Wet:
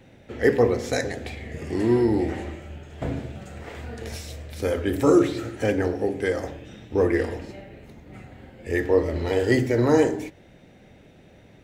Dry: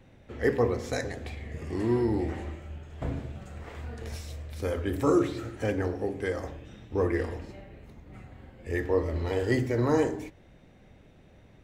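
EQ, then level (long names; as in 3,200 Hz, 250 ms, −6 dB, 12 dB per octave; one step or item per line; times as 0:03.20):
low-shelf EQ 76 Hz −12 dB
parametric band 1,100 Hz −4.5 dB 0.63 octaves
notch filter 1,100 Hz, Q 29
+7.0 dB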